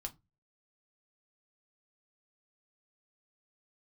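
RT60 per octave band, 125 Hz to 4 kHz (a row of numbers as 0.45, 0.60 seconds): 0.45, 0.35, 0.25, 0.20, 0.15, 0.15 seconds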